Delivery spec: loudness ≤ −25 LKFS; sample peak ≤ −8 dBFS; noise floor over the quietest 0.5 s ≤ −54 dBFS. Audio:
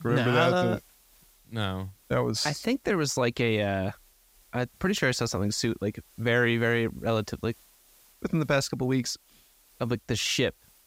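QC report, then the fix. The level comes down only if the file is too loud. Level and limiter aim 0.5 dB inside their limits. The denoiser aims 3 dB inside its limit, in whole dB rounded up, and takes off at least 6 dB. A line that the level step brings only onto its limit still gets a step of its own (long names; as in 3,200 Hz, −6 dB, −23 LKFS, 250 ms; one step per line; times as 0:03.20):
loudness −27.5 LKFS: in spec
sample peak −9.5 dBFS: in spec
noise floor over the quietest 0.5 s −60 dBFS: in spec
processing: no processing needed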